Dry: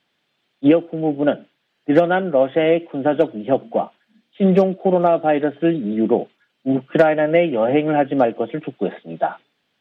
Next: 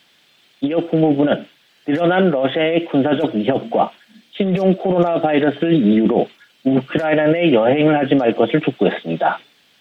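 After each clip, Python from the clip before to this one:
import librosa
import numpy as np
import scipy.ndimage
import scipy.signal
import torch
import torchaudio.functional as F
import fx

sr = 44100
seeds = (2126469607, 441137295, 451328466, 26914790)

y = fx.high_shelf(x, sr, hz=2500.0, db=10.5)
y = fx.over_compress(y, sr, threshold_db=-20.0, ratio=-1.0)
y = F.gain(torch.from_numpy(y), 5.5).numpy()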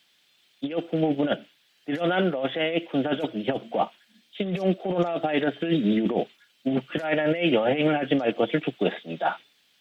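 y = fx.high_shelf(x, sr, hz=2100.0, db=8.0)
y = fx.upward_expand(y, sr, threshold_db=-22.0, expansion=1.5)
y = F.gain(torch.from_numpy(y), -8.0).numpy()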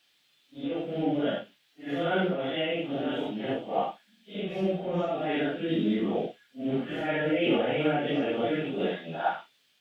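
y = fx.phase_scramble(x, sr, seeds[0], window_ms=200)
y = F.gain(torch.from_numpy(y), -3.5).numpy()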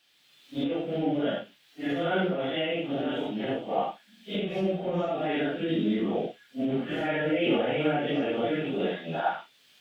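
y = fx.recorder_agc(x, sr, target_db=-21.5, rise_db_per_s=20.0, max_gain_db=30)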